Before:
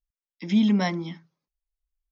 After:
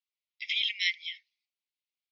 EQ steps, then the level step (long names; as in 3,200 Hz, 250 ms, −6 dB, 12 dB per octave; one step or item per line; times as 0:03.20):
Butterworth high-pass 2,000 Hz 96 dB per octave
low-pass filter 4,500 Hz 24 dB per octave
dynamic equaliser 2,800 Hz, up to +4 dB, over −53 dBFS, Q 2.2
+7.0 dB